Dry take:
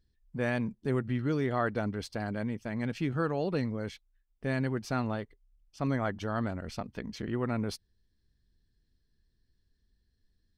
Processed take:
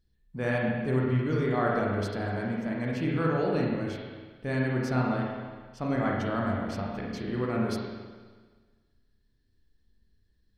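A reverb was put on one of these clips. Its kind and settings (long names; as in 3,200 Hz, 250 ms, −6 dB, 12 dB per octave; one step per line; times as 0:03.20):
spring reverb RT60 1.5 s, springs 31/40/50 ms, chirp 20 ms, DRR −3 dB
level −1 dB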